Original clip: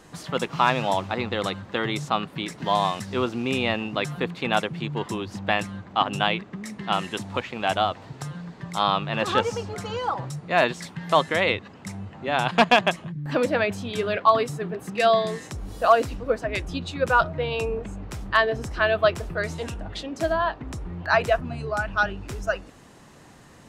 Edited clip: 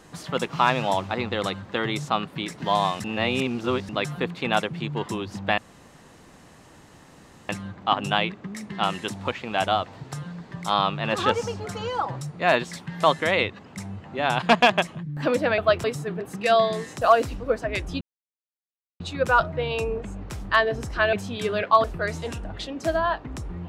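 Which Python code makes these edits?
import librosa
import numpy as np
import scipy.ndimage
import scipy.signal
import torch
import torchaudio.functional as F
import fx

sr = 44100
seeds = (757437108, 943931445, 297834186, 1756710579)

y = fx.edit(x, sr, fx.reverse_span(start_s=3.04, length_s=0.85),
    fx.insert_room_tone(at_s=5.58, length_s=1.91),
    fx.swap(start_s=13.67, length_s=0.71, other_s=18.94, other_length_s=0.26),
    fx.cut(start_s=15.55, length_s=0.26),
    fx.insert_silence(at_s=16.81, length_s=0.99), tone=tone)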